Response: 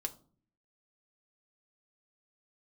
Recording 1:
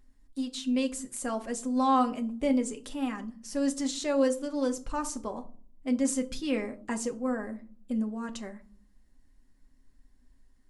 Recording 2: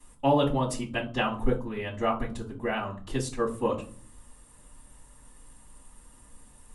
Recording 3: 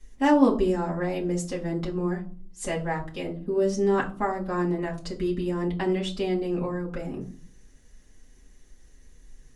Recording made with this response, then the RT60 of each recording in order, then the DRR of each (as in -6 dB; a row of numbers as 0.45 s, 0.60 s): 1; 0.45 s, 0.45 s, 0.45 s; 4.5 dB, -14.0 dB, -4.5 dB